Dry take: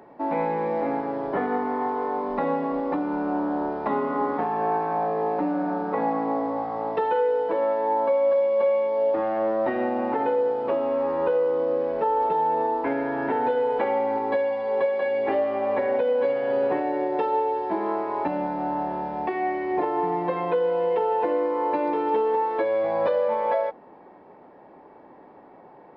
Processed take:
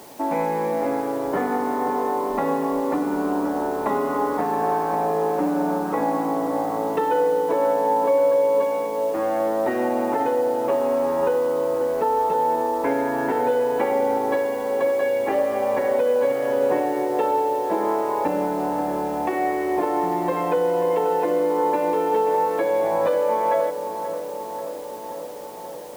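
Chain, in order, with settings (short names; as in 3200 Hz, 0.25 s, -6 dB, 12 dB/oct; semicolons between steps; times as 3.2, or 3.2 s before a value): in parallel at -3 dB: compressor 16:1, threshold -30 dBFS, peak gain reduction 12.5 dB; on the sum: requantised 8-bit, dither triangular; darkening echo 0.534 s, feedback 77%, low-pass 2100 Hz, level -10.5 dB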